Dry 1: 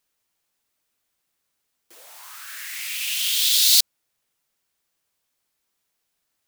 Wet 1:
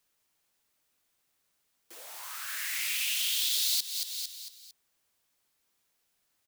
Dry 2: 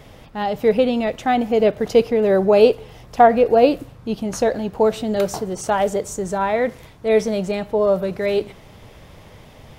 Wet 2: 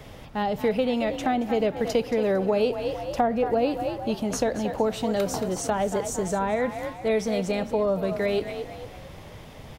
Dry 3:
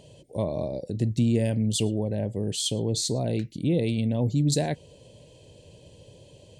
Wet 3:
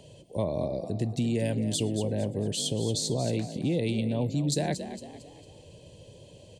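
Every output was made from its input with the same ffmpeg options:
-filter_complex "[0:a]asplit=5[a][b][c][d][e];[b]adelay=226,afreqshift=44,volume=-13dB[f];[c]adelay=452,afreqshift=88,volume=-21dB[g];[d]adelay=678,afreqshift=132,volume=-28.9dB[h];[e]adelay=904,afreqshift=176,volume=-36.9dB[i];[a][f][g][h][i]amix=inputs=5:normalize=0,acrossover=split=270|600[j][k][l];[j]acompressor=threshold=-29dB:ratio=4[m];[k]acompressor=threshold=-31dB:ratio=4[n];[l]acompressor=threshold=-28dB:ratio=4[o];[m][n][o]amix=inputs=3:normalize=0"

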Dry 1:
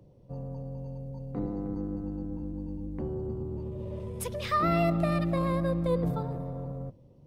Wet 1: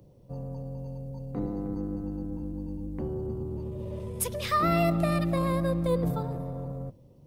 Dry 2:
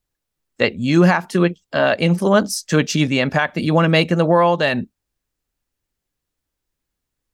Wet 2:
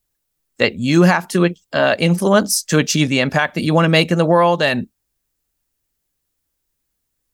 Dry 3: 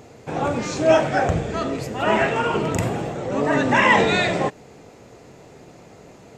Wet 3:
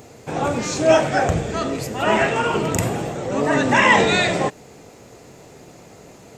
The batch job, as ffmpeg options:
-af "highshelf=f=6.6k:g=10.5,volume=1dB"

